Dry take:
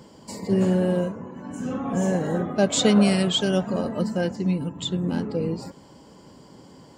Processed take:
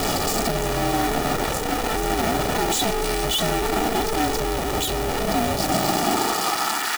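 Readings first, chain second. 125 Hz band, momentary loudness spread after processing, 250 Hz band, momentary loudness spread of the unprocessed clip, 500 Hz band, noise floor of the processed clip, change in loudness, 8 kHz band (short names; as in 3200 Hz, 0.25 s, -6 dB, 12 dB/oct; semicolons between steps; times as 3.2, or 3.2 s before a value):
-3.0 dB, 3 LU, -3.5 dB, 15 LU, +1.5 dB, -25 dBFS, +1.5 dB, +7.5 dB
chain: infinite clipping; comb 1.9 ms, depth 82%; modulation noise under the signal 15 dB; high-pass sweep 240 Hz -> 1500 Hz, 5.48–6.94; ring modulator 230 Hz; on a send: echo 0.632 s -15 dB; on the sum: gain +2.5 dB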